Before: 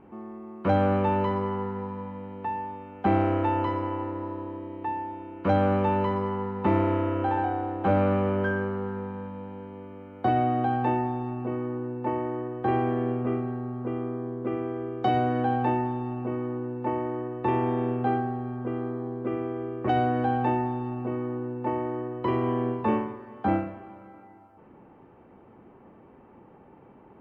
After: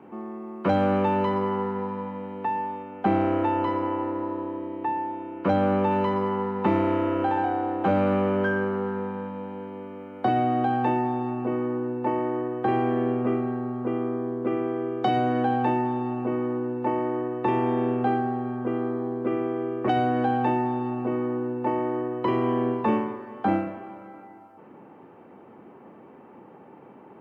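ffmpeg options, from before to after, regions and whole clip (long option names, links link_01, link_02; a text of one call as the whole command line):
ffmpeg -i in.wav -filter_complex "[0:a]asettb=1/sr,asplit=3[link_01][link_02][link_03];[link_01]atrim=end=2.824[link_04];[link_02]atrim=start=2.82:end=5.91,asetpts=PTS-STARTPTS,afade=type=in:duration=0.004:curve=qsin,afade=type=out:start_time=3.086:duration=0.004:curve=qsin,lowpass=frequency=1900:poles=1,aemphasis=mode=production:type=50kf[link_05];[link_03]atrim=start=5.906[link_06];[link_04][link_05]acrossfade=duration=0.004:curve1=hsin:curve2=qsin[link_07];[link_07][link_06]acrossfade=duration=0.004:curve1=qsin:curve2=hsin,highpass=170,acrossover=split=220|3000[link_08][link_09][link_10];[link_09]acompressor=threshold=-29dB:ratio=2[link_11];[link_08][link_11][link_10]amix=inputs=3:normalize=0,volume=5dB" out.wav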